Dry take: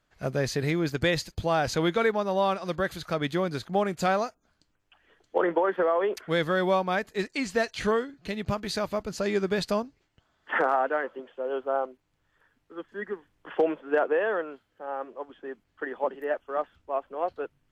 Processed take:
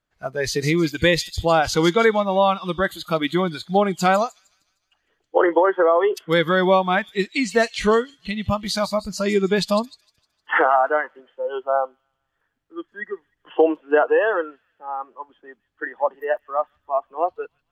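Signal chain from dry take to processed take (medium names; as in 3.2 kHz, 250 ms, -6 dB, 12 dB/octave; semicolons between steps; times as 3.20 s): feedback echo behind a high-pass 153 ms, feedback 53%, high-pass 3.8 kHz, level -7 dB; spectral noise reduction 15 dB; trim +8 dB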